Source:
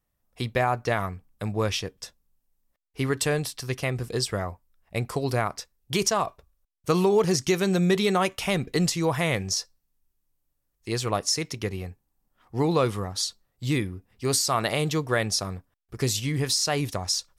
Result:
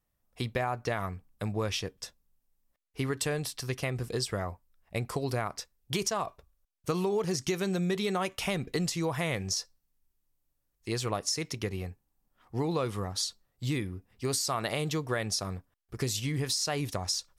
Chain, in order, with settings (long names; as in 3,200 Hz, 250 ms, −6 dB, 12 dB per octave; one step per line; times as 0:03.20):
downward compressor 3 to 1, threshold −26 dBFS, peak gain reduction 7.5 dB
level −2 dB